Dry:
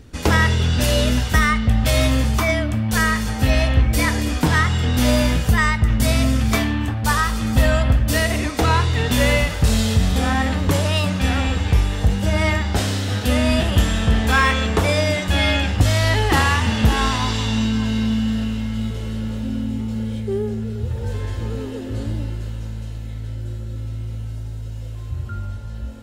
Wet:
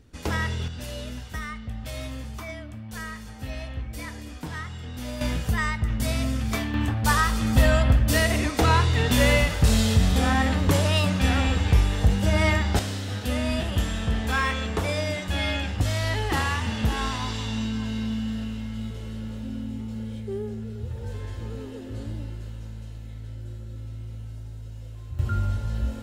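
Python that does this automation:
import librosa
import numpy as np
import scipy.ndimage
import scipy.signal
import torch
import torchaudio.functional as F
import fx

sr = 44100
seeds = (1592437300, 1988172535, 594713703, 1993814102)

y = fx.gain(x, sr, db=fx.steps((0.0, -11.0), (0.68, -17.5), (5.21, -8.5), (6.74, -2.5), (12.79, -8.5), (25.19, 3.0)))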